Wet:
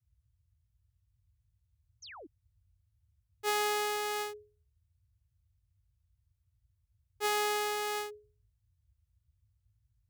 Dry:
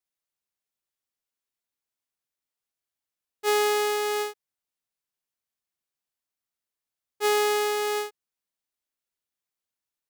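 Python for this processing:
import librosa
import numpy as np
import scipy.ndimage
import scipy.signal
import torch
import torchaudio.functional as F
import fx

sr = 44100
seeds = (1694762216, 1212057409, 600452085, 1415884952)

y = fx.hum_notches(x, sr, base_hz=60, count=7)
y = fx.spec_paint(y, sr, seeds[0], shape='fall', start_s=2.02, length_s=0.25, low_hz=260.0, high_hz=6900.0, level_db=-43.0)
y = fx.dmg_noise_band(y, sr, seeds[1], low_hz=46.0, high_hz=110.0, level_db=-67.0)
y = F.gain(torch.from_numpy(y), -5.5).numpy()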